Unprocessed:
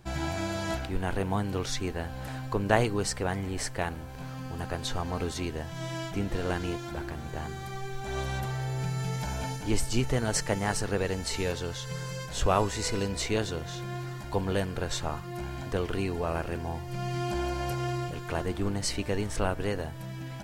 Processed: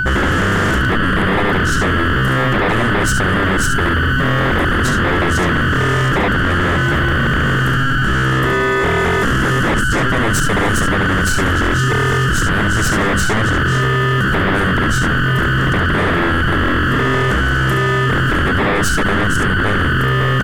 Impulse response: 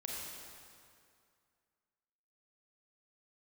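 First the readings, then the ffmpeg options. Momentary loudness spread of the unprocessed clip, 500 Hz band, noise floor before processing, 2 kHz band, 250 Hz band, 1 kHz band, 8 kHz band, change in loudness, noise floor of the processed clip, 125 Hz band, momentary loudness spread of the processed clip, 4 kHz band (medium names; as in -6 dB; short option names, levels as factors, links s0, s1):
9 LU, +12.5 dB, -39 dBFS, +24.5 dB, +16.0 dB, +17.0 dB, +10.5 dB, +17.0 dB, -15 dBFS, +16.5 dB, 1 LU, +15.5 dB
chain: -af "tiltshelf=f=730:g=10,acompressor=threshold=0.0447:ratio=3,firequalizer=gain_entry='entry(270,0);entry(420,-16);entry(6700,5)':delay=0.05:min_phase=1,aeval=exprs='val(0)+0.0141*sin(2*PI*1500*n/s)':c=same,aecho=1:1:35|70:0.237|0.473,aeval=exprs='0.266*sin(PI/2*8.91*val(0)/0.266)':c=same"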